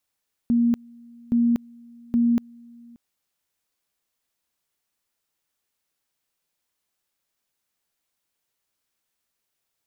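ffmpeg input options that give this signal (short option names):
-f lavfi -i "aevalsrc='pow(10,(-16-27.5*gte(mod(t,0.82),0.24))/20)*sin(2*PI*236*t)':d=2.46:s=44100"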